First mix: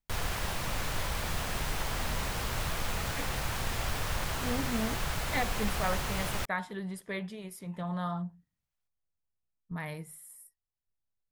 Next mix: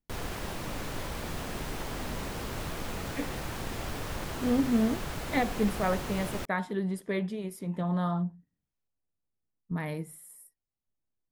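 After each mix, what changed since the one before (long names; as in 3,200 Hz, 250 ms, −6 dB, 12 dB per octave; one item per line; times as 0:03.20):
background −5.0 dB
master: add parametric band 300 Hz +10.5 dB 1.7 octaves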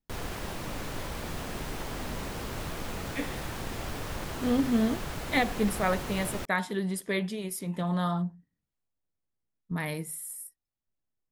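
speech: add high-shelf EQ 2,200 Hz +11.5 dB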